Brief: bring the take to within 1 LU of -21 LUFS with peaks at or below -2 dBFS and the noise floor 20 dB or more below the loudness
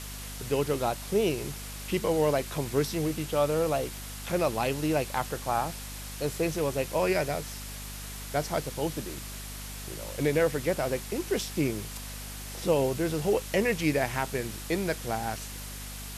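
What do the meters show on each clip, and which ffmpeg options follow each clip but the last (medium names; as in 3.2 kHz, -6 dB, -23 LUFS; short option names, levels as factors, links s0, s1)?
hum 50 Hz; highest harmonic 250 Hz; hum level -40 dBFS; noise floor -40 dBFS; noise floor target -50 dBFS; loudness -30.0 LUFS; peak level -13.5 dBFS; loudness target -21.0 LUFS
-> -af "bandreject=f=50:t=h:w=6,bandreject=f=100:t=h:w=6,bandreject=f=150:t=h:w=6,bandreject=f=200:t=h:w=6,bandreject=f=250:t=h:w=6"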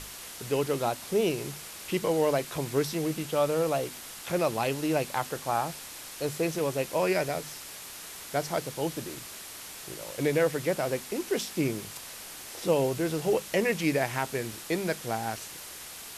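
hum not found; noise floor -43 dBFS; noise floor target -51 dBFS
-> -af "afftdn=nr=8:nf=-43"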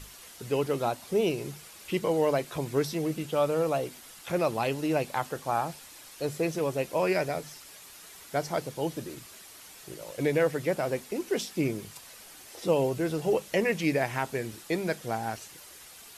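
noise floor -49 dBFS; noise floor target -50 dBFS
-> -af "afftdn=nr=6:nf=-49"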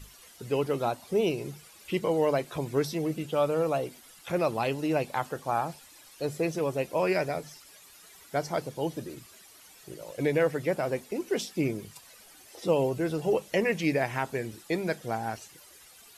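noise floor -54 dBFS; loudness -30.0 LUFS; peak level -13.5 dBFS; loudness target -21.0 LUFS
-> -af "volume=2.82"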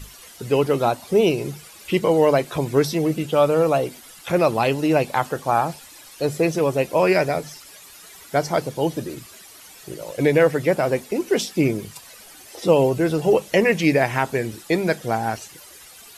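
loudness -21.0 LUFS; peak level -4.5 dBFS; noise floor -45 dBFS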